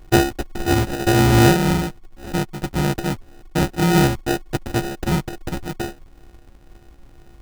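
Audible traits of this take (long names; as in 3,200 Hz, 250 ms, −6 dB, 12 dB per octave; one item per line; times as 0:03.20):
a buzz of ramps at a fixed pitch in blocks of 128 samples
phaser sweep stages 8, 2.1 Hz, lowest notch 520–1,200 Hz
aliases and images of a low sample rate 1,100 Hz, jitter 0%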